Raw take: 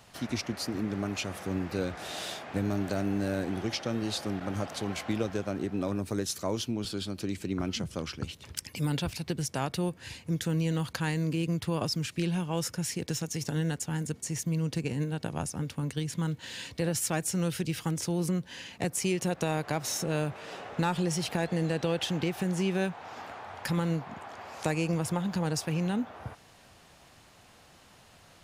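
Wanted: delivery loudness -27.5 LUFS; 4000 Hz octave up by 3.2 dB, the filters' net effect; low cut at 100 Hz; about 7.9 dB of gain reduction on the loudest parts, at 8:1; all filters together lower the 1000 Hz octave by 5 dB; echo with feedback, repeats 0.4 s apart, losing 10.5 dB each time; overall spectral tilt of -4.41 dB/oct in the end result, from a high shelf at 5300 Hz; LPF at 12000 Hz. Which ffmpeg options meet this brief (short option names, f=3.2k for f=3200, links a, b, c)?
-af "highpass=100,lowpass=12k,equalizer=f=1k:t=o:g=-7,equalizer=f=4k:t=o:g=6.5,highshelf=f=5.3k:g=-4,acompressor=threshold=-34dB:ratio=8,aecho=1:1:400|800|1200:0.299|0.0896|0.0269,volume=10.5dB"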